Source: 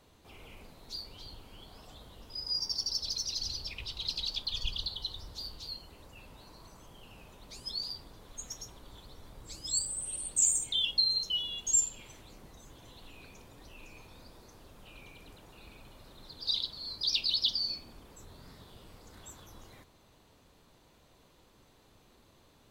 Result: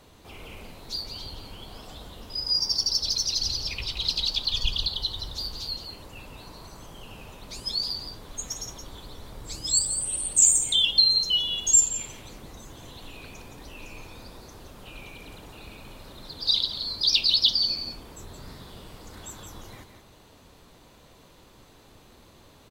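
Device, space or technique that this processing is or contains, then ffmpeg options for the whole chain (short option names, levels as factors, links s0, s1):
ducked delay: -filter_complex "[0:a]asplit=3[s0][s1][s2];[s1]adelay=171,volume=0.398[s3];[s2]apad=whole_len=1008705[s4];[s3][s4]sidechaincompress=threshold=0.0126:ratio=8:attack=16:release=229[s5];[s0][s5]amix=inputs=2:normalize=0,volume=2.66"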